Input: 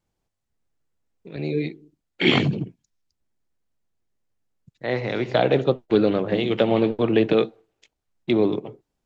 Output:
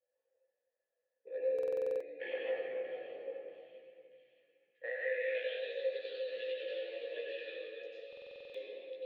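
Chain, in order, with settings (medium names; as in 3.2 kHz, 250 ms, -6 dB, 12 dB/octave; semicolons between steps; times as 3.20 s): bass shelf 380 Hz +3 dB; small resonant body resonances 510/1100/1700 Hz, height 14 dB, ringing for 60 ms; reverberation RT60 2.1 s, pre-delay 89 ms, DRR -7.5 dB; band-pass sweep 880 Hz -> 4.7 kHz, 4.62–5.79 s; treble shelf 2.8 kHz +11.5 dB, from 6.52 s +4 dB; compression 2.5:1, threshold -39 dBFS, peak gain reduction 15.5 dB; vowel filter e; feedback echo behind a high-pass 634 ms, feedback 48%, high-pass 3.9 kHz, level -5.5 dB; chorus voices 4, 0.26 Hz, delay 16 ms, depth 1.5 ms; high-pass 250 Hz 6 dB/octave; buffer glitch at 1.54/8.08 s, samples 2048, times 9; trim +7.5 dB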